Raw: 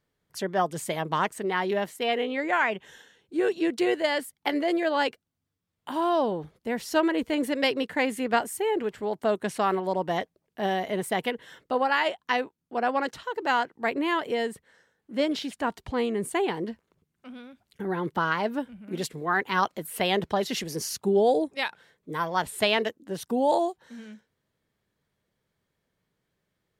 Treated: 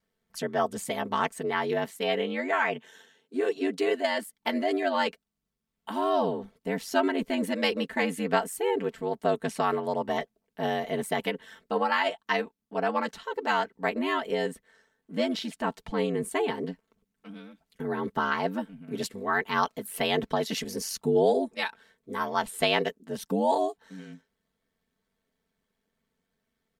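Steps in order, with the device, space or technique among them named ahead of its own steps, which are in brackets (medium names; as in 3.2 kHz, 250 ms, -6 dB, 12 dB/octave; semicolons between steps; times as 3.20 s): 2.53–4.33 s: elliptic high-pass 180 Hz; ring-modulated robot voice (ring modulator 47 Hz; comb 4.5 ms, depth 67%)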